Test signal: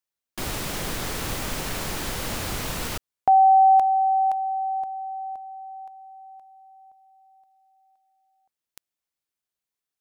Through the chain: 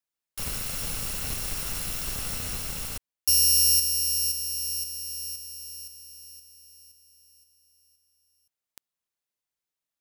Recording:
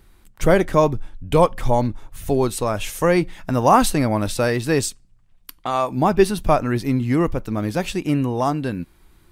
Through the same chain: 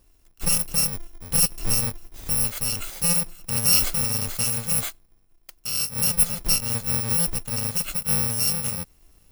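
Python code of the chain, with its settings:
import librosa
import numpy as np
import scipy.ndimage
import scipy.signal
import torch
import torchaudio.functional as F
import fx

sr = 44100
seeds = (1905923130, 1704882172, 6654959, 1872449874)

y = fx.bit_reversed(x, sr, seeds[0], block=128)
y = fx.rider(y, sr, range_db=3, speed_s=2.0)
y = y * 10.0 ** (-5.0 / 20.0)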